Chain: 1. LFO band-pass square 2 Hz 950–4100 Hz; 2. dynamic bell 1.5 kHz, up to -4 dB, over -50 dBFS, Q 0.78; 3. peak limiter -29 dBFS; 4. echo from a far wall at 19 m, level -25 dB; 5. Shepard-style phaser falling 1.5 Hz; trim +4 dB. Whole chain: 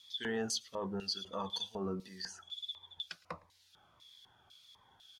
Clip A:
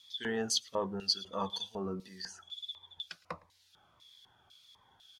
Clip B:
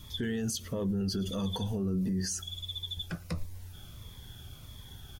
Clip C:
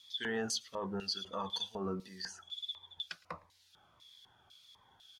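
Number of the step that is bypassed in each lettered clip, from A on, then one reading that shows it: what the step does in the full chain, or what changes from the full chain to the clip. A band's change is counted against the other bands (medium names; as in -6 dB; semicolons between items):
3, crest factor change +5.5 dB; 1, 125 Hz band +13.5 dB; 2, 2 kHz band +2.5 dB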